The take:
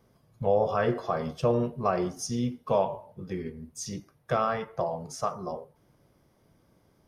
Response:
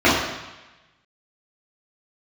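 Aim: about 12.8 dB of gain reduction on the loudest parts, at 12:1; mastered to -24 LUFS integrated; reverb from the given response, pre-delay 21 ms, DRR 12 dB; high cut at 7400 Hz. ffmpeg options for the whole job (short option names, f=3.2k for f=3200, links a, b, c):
-filter_complex "[0:a]lowpass=7.4k,acompressor=threshold=-32dB:ratio=12,asplit=2[a][b];[1:a]atrim=start_sample=2205,adelay=21[c];[b][c]afir=irnorm=-1:irlink=0,volume=-37.5dB[d];[a][d]amix=inputs=2:normalize=0,volume=14dB"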